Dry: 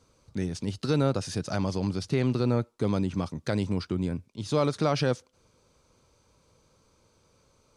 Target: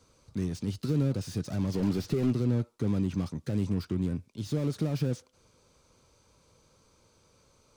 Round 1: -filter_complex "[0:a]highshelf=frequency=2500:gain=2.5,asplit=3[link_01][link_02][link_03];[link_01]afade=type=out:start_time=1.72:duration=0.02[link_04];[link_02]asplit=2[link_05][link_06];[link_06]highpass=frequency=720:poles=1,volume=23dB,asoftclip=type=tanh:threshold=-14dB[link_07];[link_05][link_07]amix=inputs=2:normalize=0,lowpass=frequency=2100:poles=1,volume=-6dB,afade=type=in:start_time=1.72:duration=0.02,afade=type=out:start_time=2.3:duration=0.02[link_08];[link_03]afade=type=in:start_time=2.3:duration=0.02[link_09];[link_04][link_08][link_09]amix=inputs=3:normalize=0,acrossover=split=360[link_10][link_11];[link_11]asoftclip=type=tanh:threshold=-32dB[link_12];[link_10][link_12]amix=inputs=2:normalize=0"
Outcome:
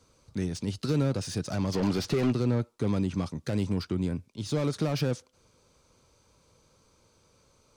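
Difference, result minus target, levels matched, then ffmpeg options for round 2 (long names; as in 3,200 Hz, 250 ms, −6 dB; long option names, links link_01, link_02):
soft clipping: distortion −5 dB
-filter_complex "[0:a]highshelf=frequency=2500:gain=2.5,asplit=3[link_01][link_02][link_03];[link_01]afade=type=out:start_time=1.72:duration=0.02[link_04];[link_02]asplit=2[link_05][link_06];[link_06]highpass=frequency=720:poles=1,volume=23dB,asoftclip=type=tanh:threshold=-14dB[link_07];[link_05][link_07]amix=inputs=2:normalize=0,lowpass=frequency=2100:poles=1,volume=-6dB,afade=type=in:start_time=1.72:duration=0.02,afade=type=out:start_time=2.3:duration=0.02[link_08];[link_03]afade=type=in:start_time=2.3:duration=0.02[link_09];[link_04][link_08][link_09]amix=inputs=3:normalize=0,acrossover=split=360[link_10][link_11];[link_11]asoftclip=type=tanh:threshold=-43.5dB[link_12];[link_10][link_12]amix=inputs=2:normalize=0"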